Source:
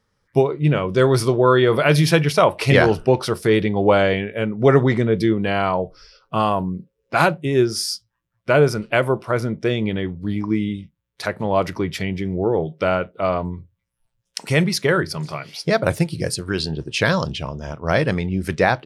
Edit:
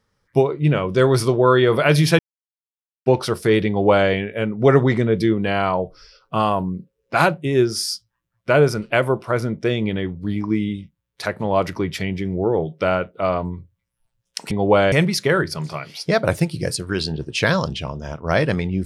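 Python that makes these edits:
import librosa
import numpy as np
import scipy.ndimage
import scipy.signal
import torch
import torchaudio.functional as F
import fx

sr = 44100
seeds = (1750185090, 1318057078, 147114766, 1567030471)

y = fx.edit(x, sr, fx.silence(start_s=2.19, length_s=0.87),
    fx.duplicate(start_s=3.68, length_s=0.41, to_s=14.51), tone=tone)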